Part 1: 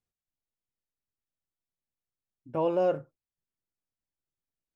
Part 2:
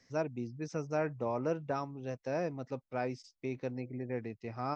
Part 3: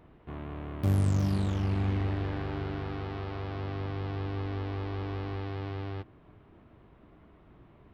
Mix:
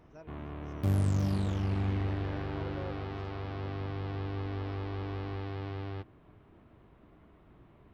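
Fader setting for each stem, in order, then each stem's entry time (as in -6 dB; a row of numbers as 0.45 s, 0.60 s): -19.0 dB, -18.5 dB, -2.0 dB; 0.00 s, 0.00 s, 0.00 s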